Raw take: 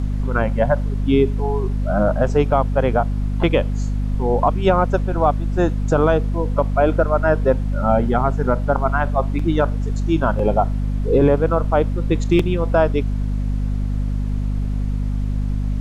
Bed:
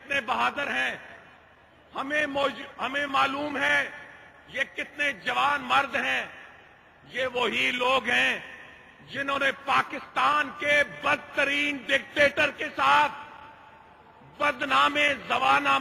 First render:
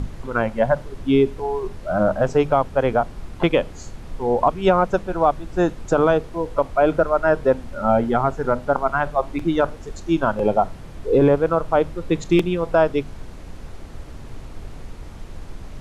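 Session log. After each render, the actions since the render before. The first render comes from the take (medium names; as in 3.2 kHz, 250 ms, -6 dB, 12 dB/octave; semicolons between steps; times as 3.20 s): hum notches 50/100/150/200/250 Hz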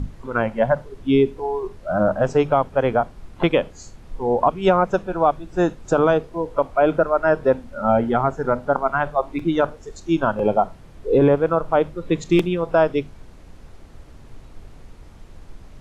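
noise print and reduce 7 dB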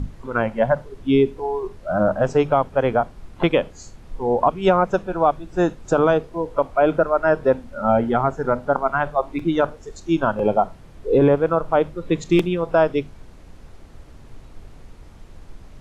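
no audible change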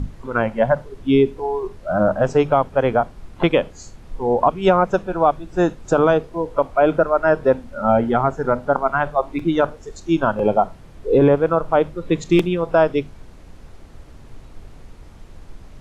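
trim +1.5 dB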